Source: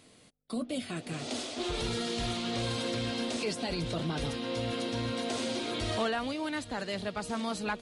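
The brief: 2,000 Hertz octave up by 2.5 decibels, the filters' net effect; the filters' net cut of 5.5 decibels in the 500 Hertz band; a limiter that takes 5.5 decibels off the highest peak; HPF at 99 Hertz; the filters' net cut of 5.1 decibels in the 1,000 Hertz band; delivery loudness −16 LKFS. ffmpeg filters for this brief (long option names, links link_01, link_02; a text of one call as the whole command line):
ffmpeg -i in.wav -af "highpass=99,equalizer=frequency=500:width_type=o:gain=-5.5,equalizer=frequency=1000:width_type=o:gain=-6.5,equalizer=frequency=2000:width_type=o:gain=5.5,volume=19.5dB,alimiter=limit=-7dB:level=0:latency=1" out.wav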